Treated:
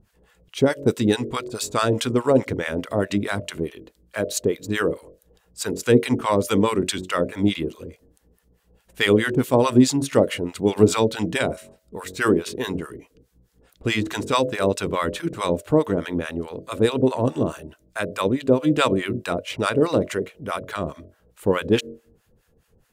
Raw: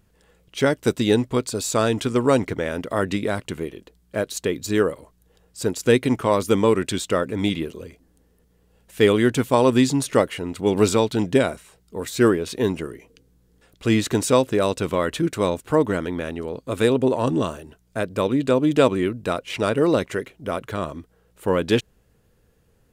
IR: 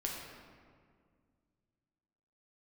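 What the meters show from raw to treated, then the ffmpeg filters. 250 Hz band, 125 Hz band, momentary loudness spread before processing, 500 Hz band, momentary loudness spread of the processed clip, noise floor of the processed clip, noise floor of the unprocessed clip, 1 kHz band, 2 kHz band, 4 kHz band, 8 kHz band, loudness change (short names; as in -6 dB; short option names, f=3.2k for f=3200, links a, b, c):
-0.5 dB, 0.0 dB, 11 LU, -1.0 dB, 13 LU, -65 dBFS, -62 dBFS, 0.0 dB, +1.0 dB, +1.0 dB, -0.5 dB, -0.5 dB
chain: -filter_complex "[0:a]bandreject=f=46.11:t=h:w=4,bandreject=f=92.22:t=h:w=4,bandreject=f=138.33:t=h:w=4,bandreject=f=184.44:t=h:w=4,bandreject=f=230.55:t=h:w=4,bandreject=f=276.66:t=h:w=4,bandreject=f=322.77:t=h:w=4,bandreject=f=368.88:t=h:w=4,bandreject=f=414.99:t=h:w=4,bandreject=f=461.1:t=h:w=4,bandreject=f=507.21:t=h:w=4,bandreject=f=553.32:t=h:w=4,bandreject=f=599.43:t=h:w=4,bandreject=f=645.54:t=h:w=4,acrossover=split=760[a][b];[a]aeval=exprs='val(0)*(1-1/2+1/2*cos(2*PI*4.7*n/s))':c=same[c];[b]aeval=exprs='val(0)*(1-1/2-1/2*cos(2*PI*4.7*n/s))':c=same[d];[c][d]amix=inputs=2:normalize=0,volume=5dB"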